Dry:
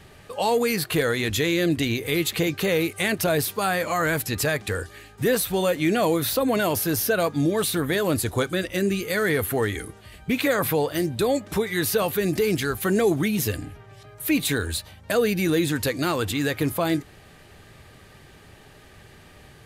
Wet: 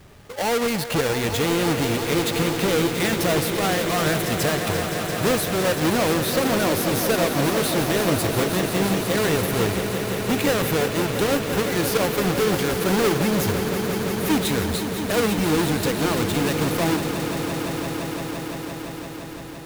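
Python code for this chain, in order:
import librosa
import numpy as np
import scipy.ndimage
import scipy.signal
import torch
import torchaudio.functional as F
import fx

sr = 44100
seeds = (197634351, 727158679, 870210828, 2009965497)

y = fx.halfwave_hold(x, sr)
y = fx.echo_swell(y, sr, ms=171, loudest=5, wet_db=-11.0)
y = F.gain(torch.from_numpy(y), -4.5).numpy()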